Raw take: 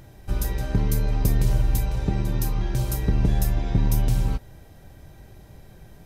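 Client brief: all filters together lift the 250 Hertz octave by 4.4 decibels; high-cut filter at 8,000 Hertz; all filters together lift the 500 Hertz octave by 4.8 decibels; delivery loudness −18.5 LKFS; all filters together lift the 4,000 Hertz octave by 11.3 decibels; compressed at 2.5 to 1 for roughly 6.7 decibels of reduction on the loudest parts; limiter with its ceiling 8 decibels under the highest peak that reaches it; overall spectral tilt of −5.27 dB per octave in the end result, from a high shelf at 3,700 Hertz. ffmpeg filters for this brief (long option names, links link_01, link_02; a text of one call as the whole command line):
ffmpeg -i in.wav -af "lowpass=8000,equalizer=frequency=250:width_type=o:gain=5.5,equalizer=frequency=500:width_type=o:gain=4,highshelf=frequency=3700:gain=8.5,equalizer=frequency=4000:width_type=o:gain=8.5,acompressor=threshold=-24dB:ratio=2.5,volume=13dB,alimiter=limit=-7dB:level=0:latency=1" out.wav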